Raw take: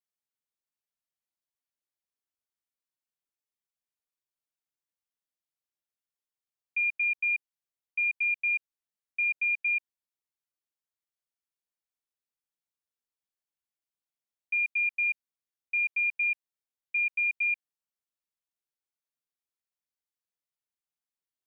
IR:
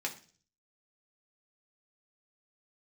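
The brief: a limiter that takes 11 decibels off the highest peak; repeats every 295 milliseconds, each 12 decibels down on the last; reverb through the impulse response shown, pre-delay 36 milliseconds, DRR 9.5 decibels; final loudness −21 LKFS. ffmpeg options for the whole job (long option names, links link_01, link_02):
-filter_complex "[0:a]alimiter=level_in=10.5dB:limit=-24dB:level=0:latency=1,volume=-10.5dB,aecho=1:1:295|590|885:0.251|0.0628|0.0157,asplit=2[link_01][link_02];[1:a]atrim=start_sample=2205,adelay=36[link_03];[link_02][link_03]afir=irnorm=-1:irlink=0,volume=-12.5dB[link_04];[link_01][link_04]amix=inputs=2:normalize=0,volume=16.5dB"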